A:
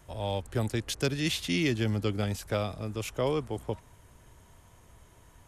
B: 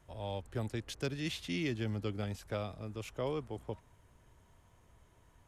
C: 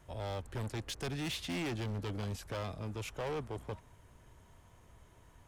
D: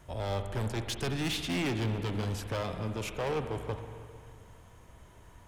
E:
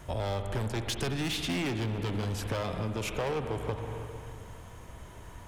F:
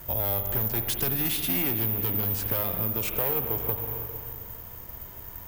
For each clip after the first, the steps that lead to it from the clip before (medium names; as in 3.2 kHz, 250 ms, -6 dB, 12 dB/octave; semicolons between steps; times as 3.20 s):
treble shelf 5.8 kHz -7 dB; trim -7.5 dB
hard clipper -38.5 dBFS, distortion -7 dB; trim +4 dB
spring tank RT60 2.3 s, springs 45/50 ms, chirp 45 ms, DRR 7 dB; trim +5 dB
compression, threshold -37 dBFS, peak gain reduction 9 dB; trim +7.5 dB
careless resampling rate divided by 3×, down none, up zero stuff